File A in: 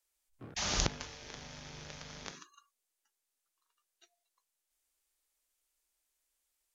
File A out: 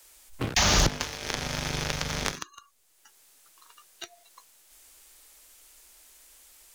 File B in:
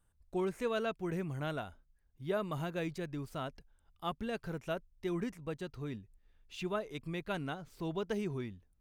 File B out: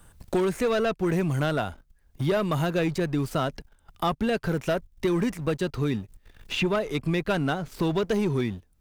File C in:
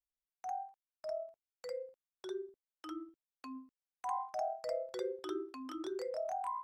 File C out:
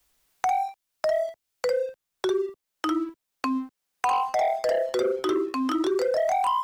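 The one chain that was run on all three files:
leveller curve on the samples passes 2
gain into a clipping stage and back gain 19 dB
multiband upward and downward compressor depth 70%
loudness normalisation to −27 LKFS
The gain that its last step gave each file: +10.0, +6.0, +9.5 decibels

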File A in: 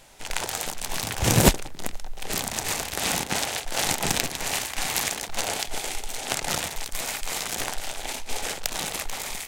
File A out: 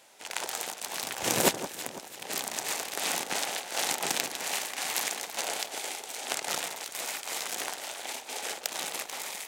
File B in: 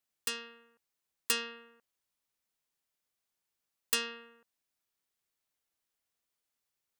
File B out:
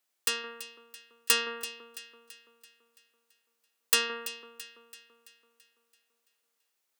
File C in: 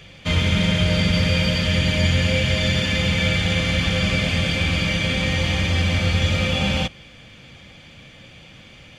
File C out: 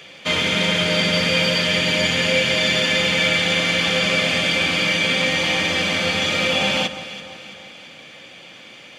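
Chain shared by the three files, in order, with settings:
high-pass filter 310 Hz 12 dB per octave
delay that swaps between a low-pass and a high-pass 167 ms, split 1,400 Hz, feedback 70%, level −11 dB
normalise the peak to −6 dBFS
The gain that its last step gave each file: −4.5, +6.0, +4.5 decibels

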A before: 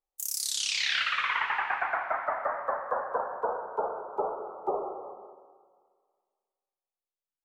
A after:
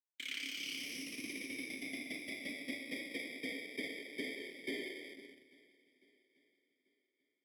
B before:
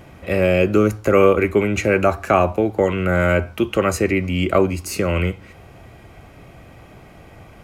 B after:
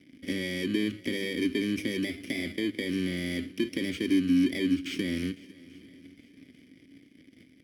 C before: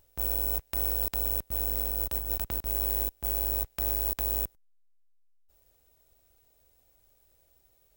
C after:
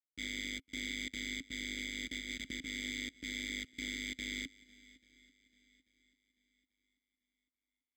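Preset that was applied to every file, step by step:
samples in bit-reversed order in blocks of 32 samples
leveller curve on the samples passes 3
downward compressor 4 to 1, threshold −12 dBFS
noise gate with hold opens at −32 dBFS
formant filter i
feedback echo with a long and a short gap by turns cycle 839 ms, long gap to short 1.5 to 1, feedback 34%, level −22 dB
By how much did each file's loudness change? −12.0, −11.5, −11.5 LU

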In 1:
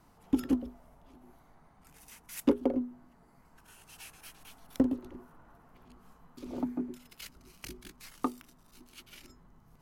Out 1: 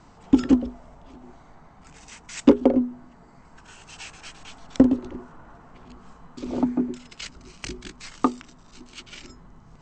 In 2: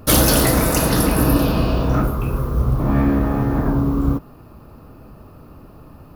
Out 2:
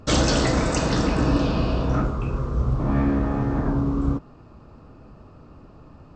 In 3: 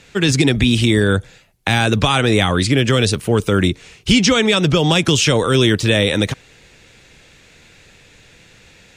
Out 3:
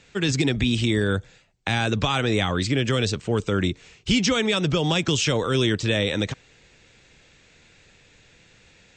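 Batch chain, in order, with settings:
linear-phase brick-wall low-pass 8,300 Hz
loudness normalisation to −23 LKFS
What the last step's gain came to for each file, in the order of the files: +11.0, −4.5, −7.5 decibels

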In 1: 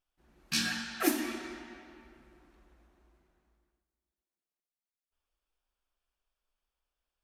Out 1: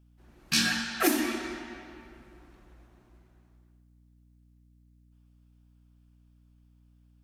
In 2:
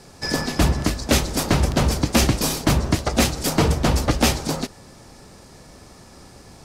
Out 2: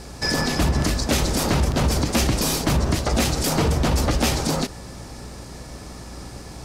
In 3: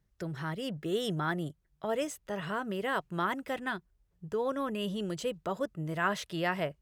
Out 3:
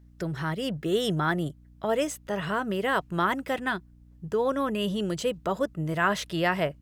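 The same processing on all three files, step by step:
mains hum 60 Hz, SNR 25 dB
brickwall limiter −18 dBFS
normalise the peak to −12 dBFS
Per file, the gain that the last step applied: +6.0, +6.0, +6.0 decibels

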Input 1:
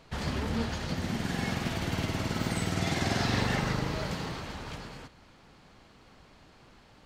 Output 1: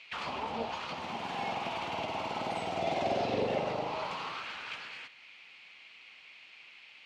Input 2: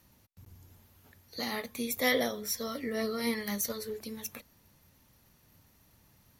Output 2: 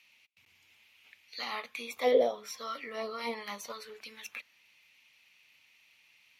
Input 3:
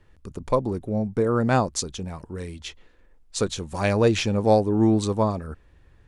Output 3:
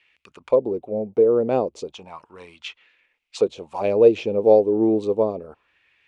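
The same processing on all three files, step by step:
envelope filter 460–2,200 Hz, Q 2.9, down, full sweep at −23 dBFS
high shelf with overshoot 2,100 Hz +6 dB, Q 3
level +8.5 dB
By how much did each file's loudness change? −3.5, −1.5, +3.0 LU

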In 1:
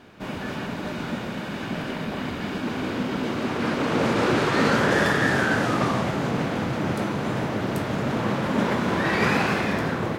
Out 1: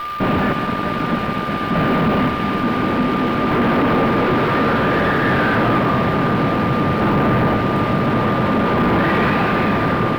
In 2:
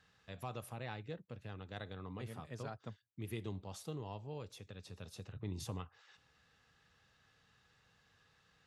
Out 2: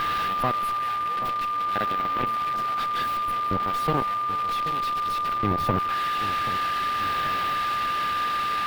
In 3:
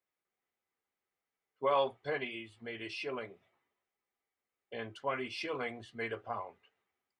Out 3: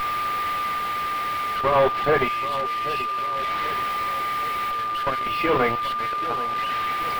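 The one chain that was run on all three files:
spike at every zero crossing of −14 dBFS
square-wave tremolo 0.57 Hz, depth 65%, duty 30%
fuzz pedal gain 48 dB, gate −39 dBFS
steady tone 1,200 Hz −21 dBFS
high-frequency loss of the air 430 metres
echo with a time of its own for lows and highs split 1,900 Hz, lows 782 ms, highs 187 ms, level −12.5 dB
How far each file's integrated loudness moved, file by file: +7.5, +22.0, +14.0 LU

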